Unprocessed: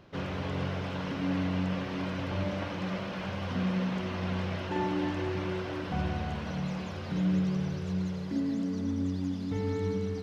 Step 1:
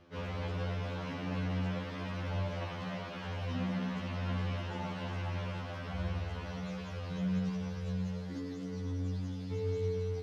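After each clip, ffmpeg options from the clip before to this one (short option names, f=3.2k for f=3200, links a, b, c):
-af "bandreject=f=60:t=h:w=6,bandreject=f=120:t=h:w=6,bandreject=f=180:t=h:w=6,afftfilt=real='re*2*eq(mod(b,4),0)':imag='im*2*eq(mod(b,4),0)':win_size=2048:overlap=0.75,volume=-2dB"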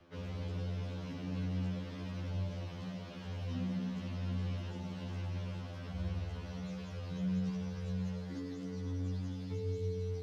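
-filter_complex "[0:a]acrossover=split=410|3000[a][b][c];[b]acompressor=threshold=-47dB:ratio=6[d];[a][d][c]amix=inputs=3:normalize=0,acrossover=split=220|560|3500[e][f][g][h];[g]alimiter=level_in=22.5dB:limit=-24dB:level=0:latency=1:release=187,volume=-22.5dB[i];[e][f][i][h]amix=inputs=4:normalize=0,volume=-1.5dB"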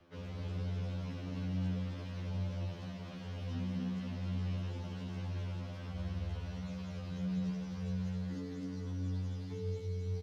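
-af "aecho=1:1:260:0.562,volume=-2dB"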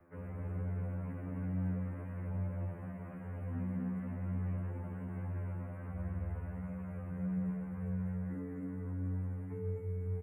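-af "asuperstop=centerf=4500:order=8:qfactor=0.65"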